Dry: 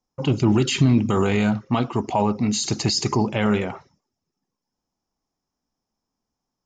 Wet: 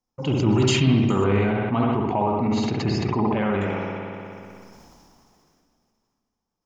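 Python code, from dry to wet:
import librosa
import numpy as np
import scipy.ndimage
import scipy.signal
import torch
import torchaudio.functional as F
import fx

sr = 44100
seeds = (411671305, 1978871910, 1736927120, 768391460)

y = fx.lowpass(x, sr, hz=2300.0, slope=12, at=(1.24, 3.61))
y = fx.rev_spring(y, sr, rt60_s=1.1, pass_ms=(60,), chirp_ms=70, drr_db=0.5)
y = fx.sustainer(y, sr, db_per_s=21.0)
y = y * 10.0 ** (-4.0 / 20.0)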